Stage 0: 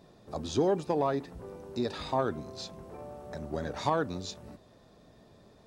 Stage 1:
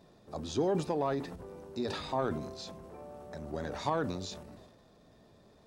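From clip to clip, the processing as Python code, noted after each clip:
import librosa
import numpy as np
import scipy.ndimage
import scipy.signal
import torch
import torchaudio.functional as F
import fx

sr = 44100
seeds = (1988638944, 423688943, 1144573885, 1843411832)

y = fx.transient(x, sr, attack_db=0, sustain_db=8)
y = fx.hum_notches(y, sr, base_hz=60, count=2)
y = y * librosa.db_to_amplitude(-3.5)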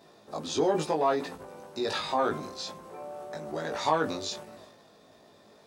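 y = fx.highpass(x, sr, hz=480.0, slope=6)
y = fx.doubler(y, sr, ms=19.0, db=-2.0)
y = y * librosa.db_to_amplitude(6.0)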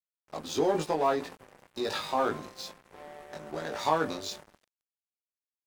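y = np.sign(x) * np.maximum(np.abs(x) - 10.0 ** (-43.5 / 20.0), 0.0)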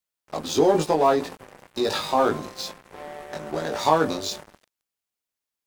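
y = fx.dynamic_eq(x, sr, hz=1900.0, q=0.82, threshold_db=-43.0, ratio=4.0, max_db=-4)
y = y * librosa.db_to_amplitude(8.5)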